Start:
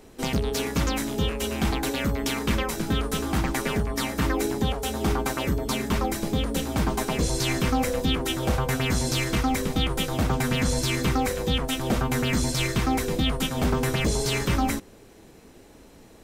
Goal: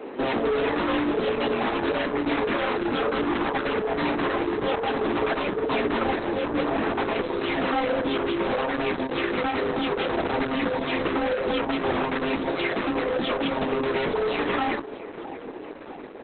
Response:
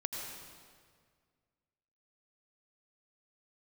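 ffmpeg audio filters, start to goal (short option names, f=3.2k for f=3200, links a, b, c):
-filter_complex "[0:a]asplit=2[a][b];[b]acompressor=threshold=-34dB:ratio=16,volume=0.5dB[c];[a][c]amix=inputs=2:normalize=0,alimiter=limit=-15.5dB:level=0:latency=1:release=13,lowpass=2k,flanger=delay=16:depth=5:speed=0.54,highpass=f=260:w=0.5412,highpass=f=260:w=1.3066,acontrast=53,aecho=1:1:652|1304|1956|2608:0.0794|0.0445|0.0249|0.0139,afreqshift=15,asoftclip=type=hard:threshold=-28.5dB,asplit=2[d][e];[1:a]atrim=start_sample=2205,atrim=end_sample=3528[f];[e][f]afir=irnorm=-1:irlink=0,volume=-5.5dB[g];[d][g]amix=inputs=2:normalize=0,volume=4.5dB" -ar 48000 -c:a libopus -b:a 8k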